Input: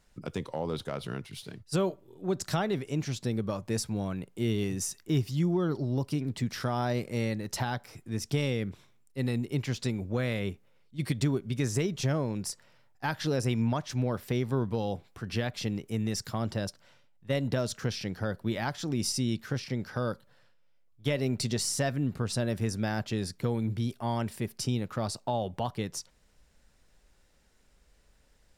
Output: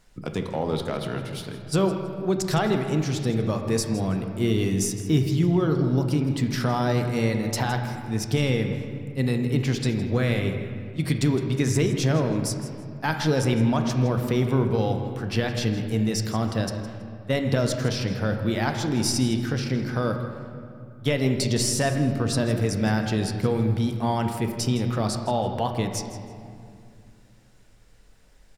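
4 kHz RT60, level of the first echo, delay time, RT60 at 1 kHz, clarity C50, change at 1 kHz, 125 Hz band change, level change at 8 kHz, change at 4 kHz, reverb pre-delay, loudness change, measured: 1.5 s, -14.5 dB, 162 ms, 2.3 s, 6.0 dB, +7.0 dB, +7.5 dB, +5.5 dB, +6.0 dB, 3 ms, +7.0 dB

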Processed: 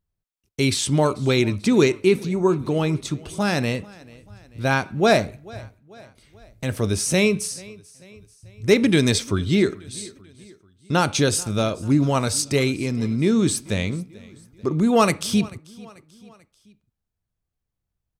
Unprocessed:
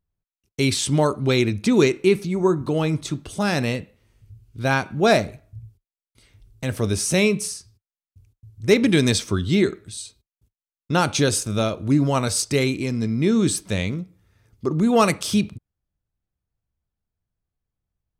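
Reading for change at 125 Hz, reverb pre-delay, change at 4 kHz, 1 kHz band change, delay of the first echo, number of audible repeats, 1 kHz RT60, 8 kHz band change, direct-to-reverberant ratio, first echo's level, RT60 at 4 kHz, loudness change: 0.0 dB, no reverb, 0.0 dB, 0.0 dB, 439 ms, 3, no reverb, 0.0 dB, no reverb, -22.5 dB, no reverb, 0.0 dB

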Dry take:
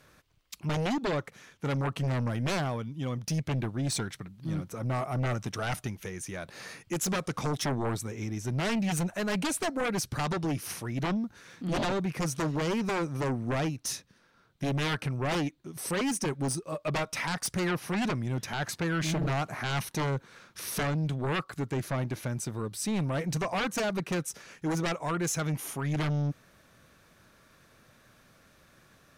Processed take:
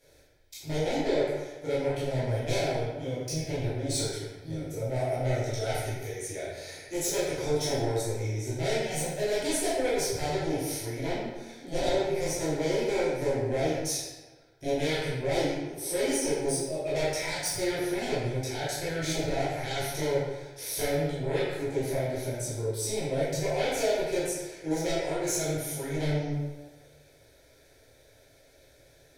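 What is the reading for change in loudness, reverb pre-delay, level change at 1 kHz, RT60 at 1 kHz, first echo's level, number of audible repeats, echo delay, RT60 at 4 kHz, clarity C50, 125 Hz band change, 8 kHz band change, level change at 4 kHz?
+1.5 dB, 11 ms, -1.5 dB, 1.3 s, no echo, no echo, no echo, 0.85 s, -1.0 dB, -2.0 dB, +3.0 dB, +2.0 dB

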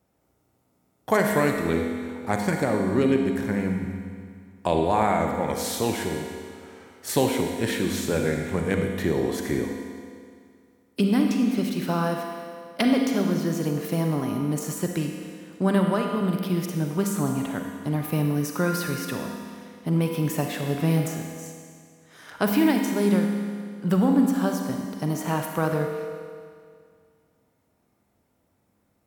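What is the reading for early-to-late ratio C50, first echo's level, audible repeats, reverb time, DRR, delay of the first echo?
2.5 dB, no echo, no echo, 2.1 s, 2.0 dB, no echo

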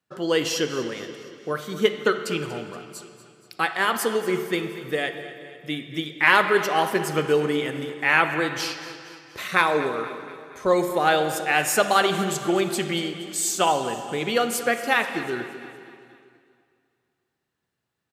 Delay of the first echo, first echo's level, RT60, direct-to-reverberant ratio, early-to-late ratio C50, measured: 237 ms, -15.5 dB, 2.3 s, 8.0 dB, 8.0 dB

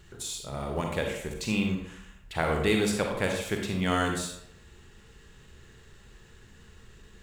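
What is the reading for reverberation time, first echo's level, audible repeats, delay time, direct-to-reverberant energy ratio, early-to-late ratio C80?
0.75 s, no echo, no echo, no echo, 1.5 dB, 6.5 dB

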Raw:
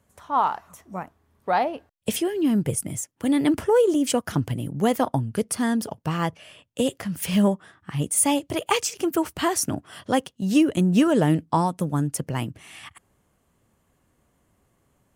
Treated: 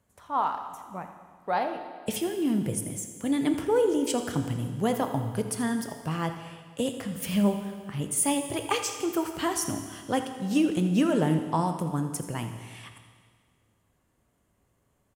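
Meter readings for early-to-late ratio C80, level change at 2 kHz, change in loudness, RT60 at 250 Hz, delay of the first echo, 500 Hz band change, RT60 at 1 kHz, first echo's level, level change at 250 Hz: 8.5 dB, -4.5 dB, -4.5 dB, 1.8 s, 83 ms, -4.5 dB, 1.8 s, -14.0 dB, -4.5 dB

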